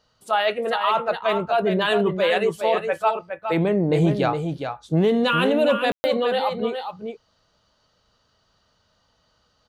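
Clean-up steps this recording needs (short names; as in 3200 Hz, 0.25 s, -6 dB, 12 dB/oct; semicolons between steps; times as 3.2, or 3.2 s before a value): room tone fill 5.92–6.04; inverse comb 0.413 s -7 dB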